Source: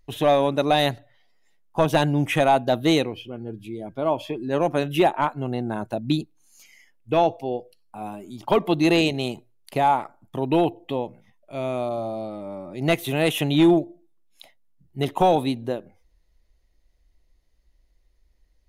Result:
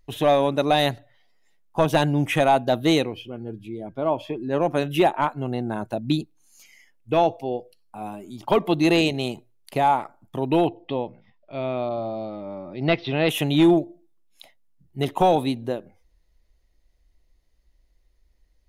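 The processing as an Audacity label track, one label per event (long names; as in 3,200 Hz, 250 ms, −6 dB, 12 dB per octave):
3.580000	4.690000	high-shelf EQ 3,800 Hz −8 dB
10.670000	13.290000	Butterworth low-pass 5,400 Hz 96 dB per octave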